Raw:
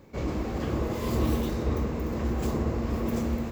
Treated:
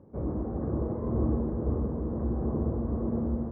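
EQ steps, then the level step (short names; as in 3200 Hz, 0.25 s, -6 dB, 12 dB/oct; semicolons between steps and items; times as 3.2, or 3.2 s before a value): Gaussian blur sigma 8.1 samples; HPF 50 Hz; air absorption 320 m; 0.0 dB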